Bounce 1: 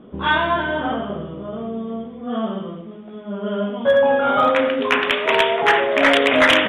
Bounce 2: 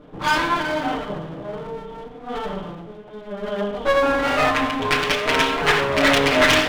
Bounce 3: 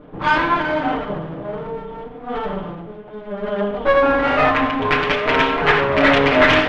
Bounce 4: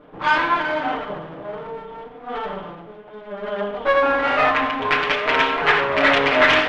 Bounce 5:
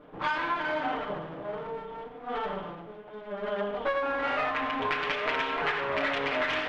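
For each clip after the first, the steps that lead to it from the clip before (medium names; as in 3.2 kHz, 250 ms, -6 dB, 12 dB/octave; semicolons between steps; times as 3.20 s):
comb filter that takes the minimum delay 6.7 ms
low-pass 2.6 kHz 12 dB/octave; trim +3.5 dB
bass shelf 350 Hz -11.5 dB
compression 10:1, threshold -21 dBFS, peak gain reduction 11.5 dB; trim -4.5 dB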